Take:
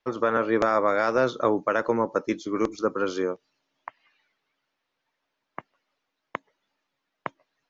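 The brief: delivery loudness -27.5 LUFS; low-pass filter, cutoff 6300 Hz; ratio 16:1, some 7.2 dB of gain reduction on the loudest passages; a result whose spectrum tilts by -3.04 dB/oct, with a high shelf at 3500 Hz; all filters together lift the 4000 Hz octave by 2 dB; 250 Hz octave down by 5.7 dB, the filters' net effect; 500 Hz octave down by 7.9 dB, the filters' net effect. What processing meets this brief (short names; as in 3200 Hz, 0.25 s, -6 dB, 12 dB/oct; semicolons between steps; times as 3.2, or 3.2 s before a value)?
LPF 6300 Hz; bell 250 Hz -4 dB; bell 500 Hz -8.5 dB; high shelf 3500 Hz -3.5 dB; bell 4000 Hz +5.5 dB; compressor 16:1, threshold -28 dBFS; gain +8.5 dB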